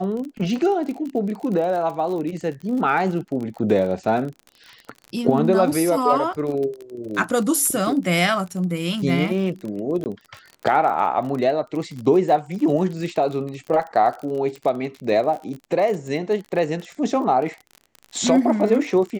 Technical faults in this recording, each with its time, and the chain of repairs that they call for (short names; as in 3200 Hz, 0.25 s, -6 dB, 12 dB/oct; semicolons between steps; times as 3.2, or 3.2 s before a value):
crackle 40/s -29 dBFS
10.04–10.06 gap 19 ms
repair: de-click; interpolate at 10.04, 19 ms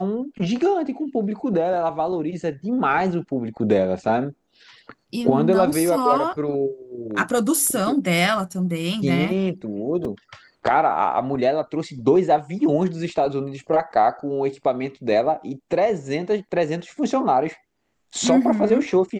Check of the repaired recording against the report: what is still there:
none